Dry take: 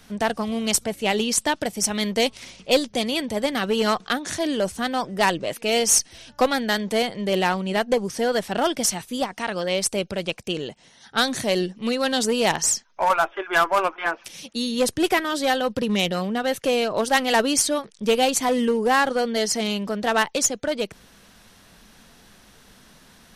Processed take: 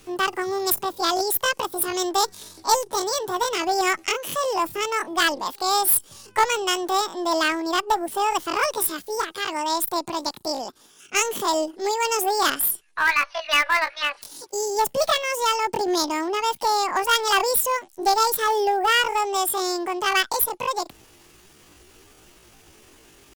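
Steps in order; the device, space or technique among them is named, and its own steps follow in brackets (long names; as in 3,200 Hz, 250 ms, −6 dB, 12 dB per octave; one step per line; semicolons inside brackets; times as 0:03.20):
chipmunk voice (pitch shifter +9.5 semitones)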